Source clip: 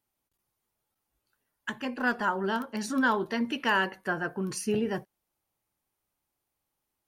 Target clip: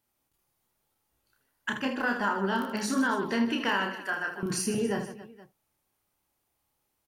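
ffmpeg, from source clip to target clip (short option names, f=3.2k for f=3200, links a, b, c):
-filter_complex "[0:a]asettb=1/sr,asplit=3[a][b][c];[a]atrim=end=3.894[d];[b]atrim=start=3.89:end=4.43,asetpts=PTS-STARTPTS,afade=t=in:d=0.004:c=qsin,afade=t=out:st=0.536:d=0.004:c=qsin,highpass=f=1.5k:p=1[e];[c]atrim=start=4.426[f];[d][e]acrossfade=d=0.004:c1=hsin:c2=qsin[g];[g][f]acrossfade=d=0.004:c1=qsin:c2=hsin,acompressor=threshold=-29dB:ratio=6,aecho=1:1:30|78|154.8|277.7|474.3:0.631|0.398|0.251|0.158|0.1,volume=3dB"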